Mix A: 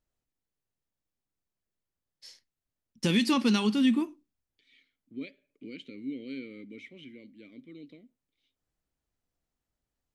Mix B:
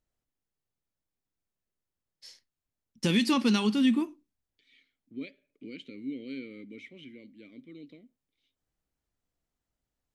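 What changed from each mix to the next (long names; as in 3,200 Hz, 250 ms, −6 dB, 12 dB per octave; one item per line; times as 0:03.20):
nothing changed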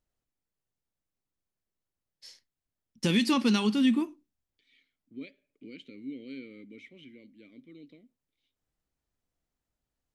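second voice −3.0 dB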